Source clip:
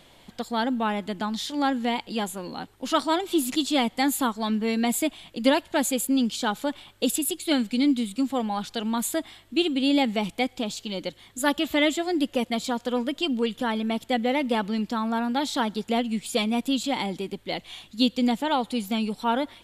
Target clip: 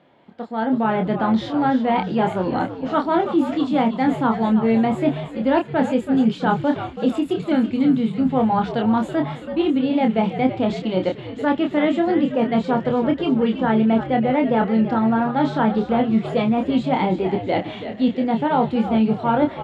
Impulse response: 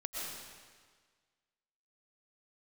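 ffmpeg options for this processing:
-filter_complex "[0:a]areverse,acompressor=threshold=-30dB:ratio=6,areverse,lowpass=1.5k,bandreject=f=1.1k:w=14,asplit=8[a][b][c][d][e][f][g][h];[b]adelay=328,afreqshift=-82,volume=-10dB[i];[c]adelay=656,afreqshift=-164,volume=-14.9dB[j];[d]adelay=984,afreqshift=-246,volume=-19.8dB[k];[e]adelay=1312,afreqshift=-328,volume=-24.6dB[l];[f]adelay=1640,afreqshift=-410,volume=-29.5dB[m];[g]adelay=1968,afreqshift=-492,volume=-34.4dB[n];[h]adelay=2296,afreqshift=-574,volume=-39.3dB[o];[a][i][j][k][l][m][n][o]amix=inputs=8:normalize=0,dynaudnorm=f=170:g=7:m=14dB,highpass=160,asplit=2[p][q];[q]adelay=27,volume=-5dB[r];[p][r]amix=inputs=2:normalize=0"

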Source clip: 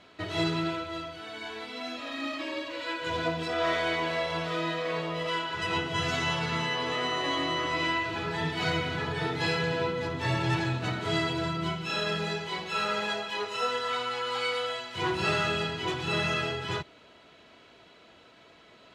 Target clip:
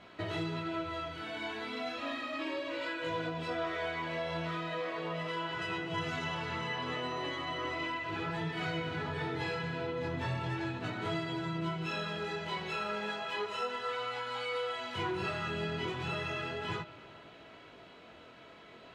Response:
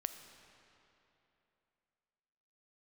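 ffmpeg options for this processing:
-filter_complex "[0:a]acompressor=threshold=-35dB:ratio=6,flanger=delay=17.5:depth=6.4:speed=0.35,asplit=2[a][b];[1:a]atrim=start_sample=2205,lowpass=3.5k[c];[b][c]afir=irnorm=-1:irlink=0,volume=-0.5dB[d];[a][d]amix=inputs=2:normalize=0"

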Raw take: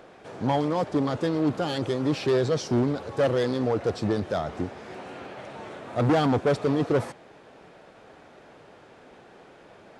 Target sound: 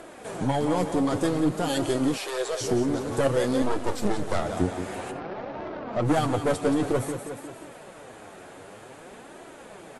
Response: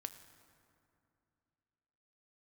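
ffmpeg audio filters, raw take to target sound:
-filter_complex "[0:a]asplit=2[a][b];[b]aecho=0:1:178|356|534|712|890:0.316|0.142|0.064|0.0288|0.013[c];[a][c]amix=inputs=2:normalize=0,aexciter=amount=4.9:drive=6.4:freq=7.3k,asettb=1/sr,asplit=3[d][e][f];[d]atrim=end=3.624[g];[e]atrim=start=3.62:end=4.42,asetpts=PTS-STARTPTS,afade=t=in:d=0.004:c=qsin,afade=t=out:st=0.796:d=0.004:c=qsin,aeval=exprs='max(val(0),0)':c=same[h];[f]atrim=start=4.416[i];[g][h]acrossfade=d=0.004:c1=hsin:c2=qsin[j];[j][i]acrossfade=d=0.004:c1=qsin:c2=hsin,alimiter=limit=-20dB:level=0:latency=1:release=499,asettb=1/sr,asplit=3[k][l][m];[k]atrim=end=2.174[n];[l]atrim=start=2.17:end=2.61,asetpts=PTS-STARTPTS,afade=t=in:d=0.004:c=qsin,afade=t=out:st=0.436:d=0.004:c=qsin,highpass=f=500:w=0.5412,highpass=f=500:w=1.3066[o];[m]atrim=start=2.606[p];[n][o]acrossfade=d=0.004:c1=hsin:c2=qsin[q];[q][p]acrossfade=d=0.004:c1=qsin:c2=hsin,asettb=1/sr,asplit=3[r][s][t];[r]atrim=end=5.114[u];[s]atrim=start=5.11:end=6.08,asetpts=PTS-STARTPTS,afade=t=in:d=0.004:c=qsin,afade=t=out:st=0.966:d=0.004:c=qsin,adynamicsmooth=sensitivity=5:basefreq=820[v];[t]atrim=start=6.076[w];[u][v]acrossfade=d=0.004:c1=hsin:c2=qsin[x];[x][w]acrossfade=d=0.004:c1=qsin:c2=hsin,aeval=exprs='0.1*(cos(1*acos(clip(val(0)/0.1,-1,1)))-cos(1*PI/2))+0.0158*(cos(2*acos(clip(val(0)/0.1,-1,1)))-cos(2*PI/2))':c=same,flanger=delay=3:depth=8:regen=36:speed=0.53:shape=sinusoidal,volume=9dB" -ar 32000 -c:a wmav2 -b:a 64k

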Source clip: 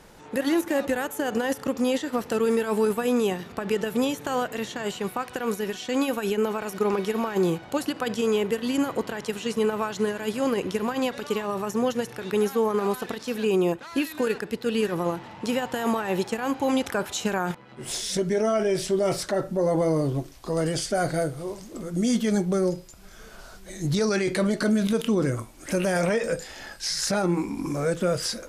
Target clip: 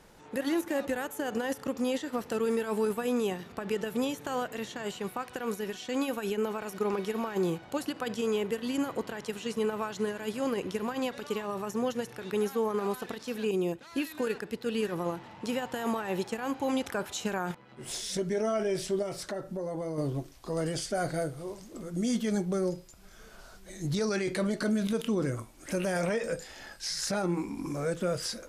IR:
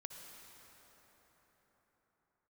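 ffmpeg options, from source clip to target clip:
-filter_complex "[0:a]asettb=1/sr,asplit=3[a][b][c];[a]atrim=end=13.514[d];[b]atrim=start=13.51:end=13.99,asetpts=PTS-STARTPTS,afade=t=in:d=0.004:c=qsin,afade=t=out:st=0.476:d=0.004:c=qsin,adynamicequalizer=threshold=0.00891:dfrequency=1100:dqfactor=0.87:tfrequency=1100:tqfactor=0.87:attack=5:release=100:ratio=0.375:range=3.5:mode=cutabove:tftype=bell[e];[c]atrim=start=13.986[f];[d][e]acrossfade=d=0.004:c1=hsin:c2=qsin[g];[g][f]acrossfade=d=0.004:c1=qsin:c2=hsin,asettb=1/sr,asplit=3[h][i][j];[h]atrim=end=19.024[k];[i]atrim=start=19.02:end=19.98,asetpts=PTS-STARTPTS,afade=t=in:d=0.004:c=qsin,afade=t=out:st=0.956:d=0.004:c=qsin,acompressor=threshold=-27dB:ratio=4[l];[j]atrim=start=19.976[m];[k][l]acrossfade=d=0.004:c1=hsin:c2=qsin[n];[n][m]acrossfade=d=0.004:c1=qsin:c2=hsin,volume=-6dB"

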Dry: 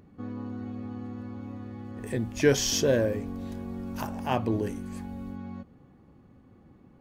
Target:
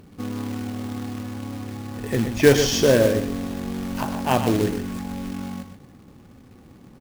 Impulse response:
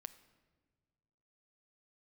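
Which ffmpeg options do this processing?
-filter_complex "[0:a]asplit=2[a][b];[1:a]atrim=start_sample=2205,asetrate=66150,aresample=44100,lowpass=5.1k[c];[b][c]afir=irnorm=-1:irlink=0,volume=9dB[d];[a][d]amix=inputs=2:normalize=0,acrusher=bits=3:mode=log:mix=0:aa=0.000001,aecho=1:1:123:0.376,volume=1dB"

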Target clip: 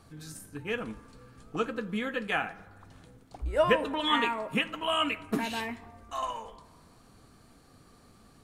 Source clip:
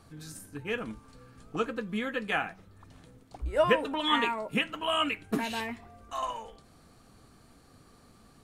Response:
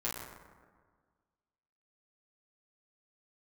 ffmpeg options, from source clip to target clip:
-filter_complex "[0:a]asplit=2[a][b];[1:a]atrim=start_sample=2205,adelay=34[c];[b][c]afir=irnorm=-1:irlink=0,volume=-20.5dB[d];[a][d]amix=inputs=2:normalize=0"

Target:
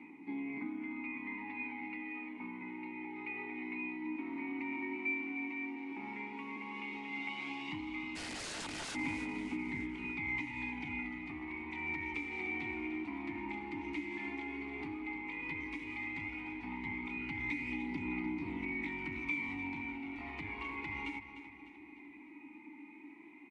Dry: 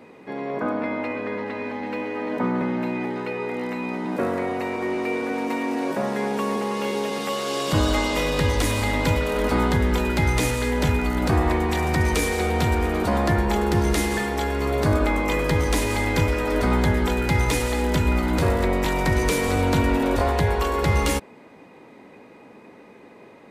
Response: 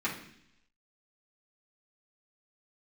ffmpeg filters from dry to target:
-filter_complex "[0:a]aeval=exprs='clip(val(0),-1,0.106)':c=same,asplit=3[a][b][c];[a]bandpass=f=300:t=q:w=8,volume=0dB[d];[b]bandpass=f=870:t=q:w=8,volume=-6dB[e];[c]bandpass=f=2.24k:t=q:w=8,volume=-9dB[f];[d][e][f]amix=inputs=3:normalize=0,acompressor=threshold=-40dB:ratio=5,equalizer=f=500:t=o:w=1:g=-11,equalizer=f=1k:t=o:w=1:g=-4,equalizer=f=2k:t=o:w=1:g=11,aphaser=in_gain=1:out_gain=1:delay=3.4:decay=0.42:speed=0.11:type=triangular,asplit=3[g][h][i];[g]afade=t=out:st=8.15:d=0.02[j];[h]aeval=exprs='(mod(94.4*val(0)+1,2)-1)/94.4':c=same,afade=t=in:st=8.15:d=0.02,afade=t=out:st=8.94:d=0.02[k];[i]afade=t=in:st=8.94:d=0.02[l];[j][k][l]amix=inputs=3:normalize=0,aecho=1:1:301|602|903|1204|1505:0.251|0.126|0.0628|0.0314|0.0157,volume=2.5dB" -ar 22050 -c:a nellymoser

